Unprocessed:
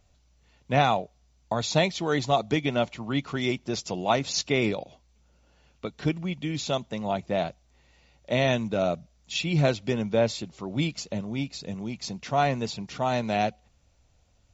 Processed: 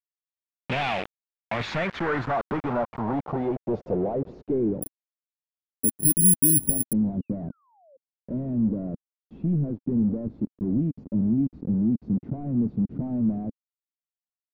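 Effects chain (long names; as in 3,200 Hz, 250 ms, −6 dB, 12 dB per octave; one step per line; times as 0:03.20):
downward compressor 16 to 1, threshold −27 dBFS, peak gain reduction 12.5 dB
log-companded quantiser 2 bits
0:07.00–0:07.97: sound drawn into the spectrogram fall 510–4,800 Hz −42 dBFS
low-pass filter sweep 2,700 Hz → 260 Hz, 0:01.23–0:05.05
0:04.82–0:06.93: bad sample-rate conversion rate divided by 4×, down none, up zero stuff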